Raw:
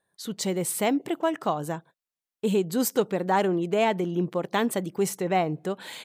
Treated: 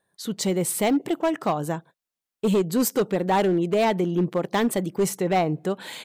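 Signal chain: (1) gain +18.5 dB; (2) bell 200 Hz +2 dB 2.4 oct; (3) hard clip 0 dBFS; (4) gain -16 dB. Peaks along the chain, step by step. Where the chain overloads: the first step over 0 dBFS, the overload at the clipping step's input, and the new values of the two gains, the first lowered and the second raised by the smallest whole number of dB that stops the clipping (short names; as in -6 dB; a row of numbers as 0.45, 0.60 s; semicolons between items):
+8.5, +9.5, 0.0, -16.0 dBFS; step 1, 9.5 dB; step 1 +8.5 dB, step 4 -6 dB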